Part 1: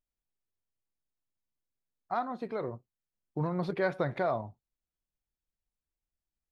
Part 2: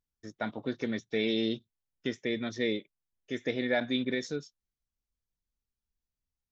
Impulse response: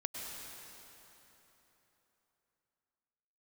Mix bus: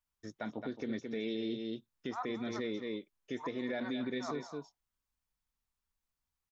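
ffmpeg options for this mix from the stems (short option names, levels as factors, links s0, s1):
-filter_complex "[0:a]highpass=f=1000:t=q:w=2.4,volume=1,asplit=2[s0][s1];[s1]volume=0.0841[s2];[1:a]adynamicequalizer=threshold=0.01:dfrequency=300:dqfactor=0.8:tfrequency=300:tqfactor=0.8:attack=5:release=100:ratio=0.375:range=2.5:mode=boostabove:tftype=bell,volume=0.841,asplit=3[s3][s4][s5];[s4]volume=0.335[s6];[s5]apad=whole_len=287152[s7];[s0][s7]sidechaincompress=threshold=0.00562:ratio=8:attack=26:release=102[s8];[s2][s6]amix=inputs=2:normalize=0,aecho=0:1:217:1[s9];[s8][s3][s9]amix=inputs=3:normalize=0,alimiter=level_in=1.58:limit=0.0631:level=0:latency=1:release=253,volume=0.631"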